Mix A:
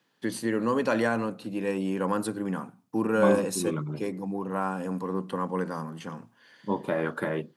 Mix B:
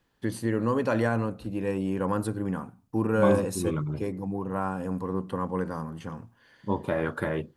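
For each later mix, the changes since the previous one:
first voice: add parametric band 4,700 Hz −5 dB 2.8 octaves
master: remove high-pass filter 150 Hz 24 dB per octave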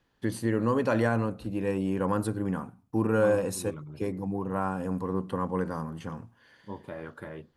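second voice −12.0 dB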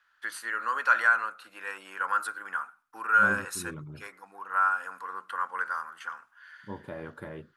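first voice: add high-pass with resonance 1,400 Hz, resonance Q 6.2

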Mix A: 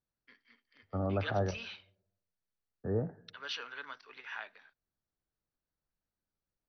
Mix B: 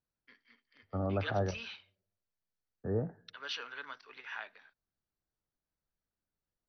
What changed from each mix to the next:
second voice: send −6.5 dB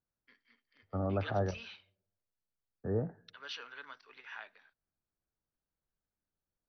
first voice −4.0 dB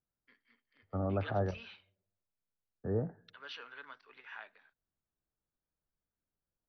master: add high-frequency loss of the air 160 metres

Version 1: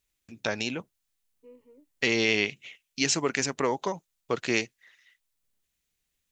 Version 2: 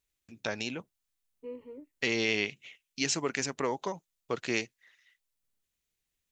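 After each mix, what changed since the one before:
first voice −4.5 dB
second voice +10.0 dB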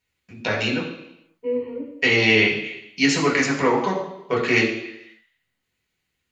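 reverb: on, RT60 0.85 s

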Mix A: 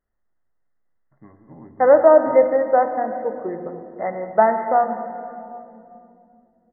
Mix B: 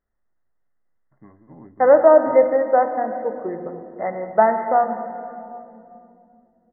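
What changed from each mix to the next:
first voice: send −10.0 dB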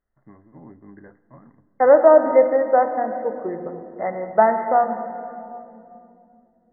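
first voice: entry −0.95 s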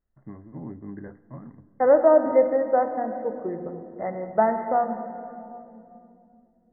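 second voice −7.5 dB
master: add low-shelf EQ 390 Hz +9.5 dB

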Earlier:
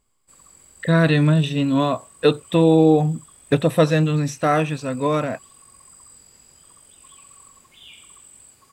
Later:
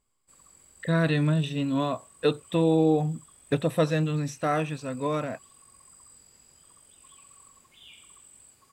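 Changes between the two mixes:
speech −7.5 dB
background −6.0 dB

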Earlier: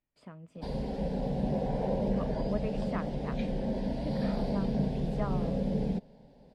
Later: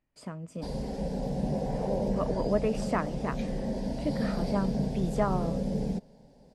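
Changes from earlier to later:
speech +8.5 dB
master: add high shelf with overshoot 4,700 Hz +8.5 dB, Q 1.5

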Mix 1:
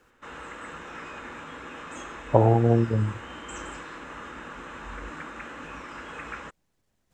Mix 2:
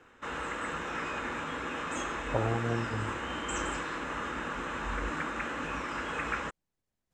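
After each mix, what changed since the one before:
speech −12.0 dB
background +4.5 dB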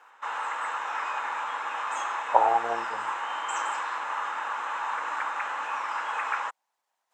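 speech +8.5 dB
master: add high-pass with resonance 880 Hz, resonance Q 3.6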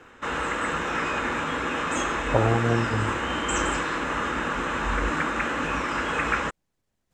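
background +8.5 dB
master: remove high-pass with resonance 880 Hz, resonance Q 3.6

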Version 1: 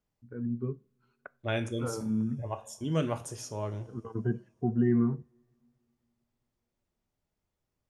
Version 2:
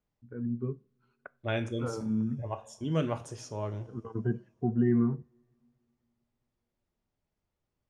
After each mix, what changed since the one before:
master: add high-frequency loss of the air 65 metres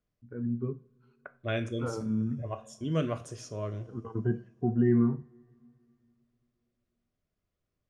first voice: send +10.0 dB
second voice: add Butterworth band-reject 870 Hz, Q 4.2

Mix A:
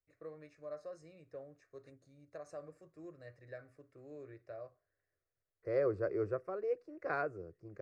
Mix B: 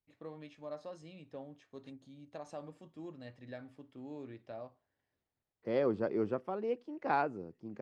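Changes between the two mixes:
second voice: add high-pass filter 130 Hz
master: remove phaser with its sweep stopped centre 870 Hz, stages 6

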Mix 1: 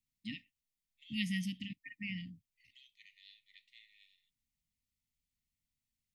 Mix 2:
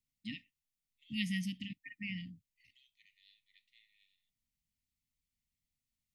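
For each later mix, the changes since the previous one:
second voice −7.0 dB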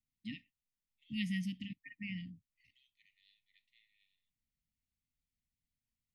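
master: add high-shelf EQ 2,600 Hz −7 dB

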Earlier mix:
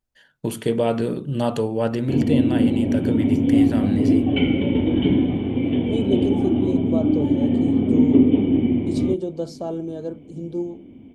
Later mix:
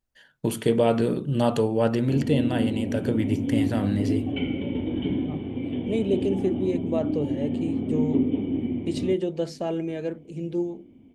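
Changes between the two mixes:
second voice: remove Butterworth band-reject 2,200 Hz, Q 1
background −8.5 dB

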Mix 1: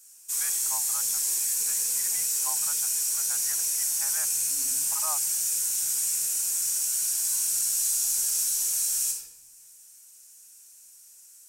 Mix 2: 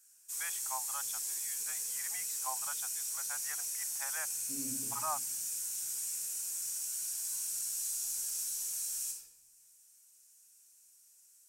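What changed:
second voice +11.0 dB
background −11.0 dB

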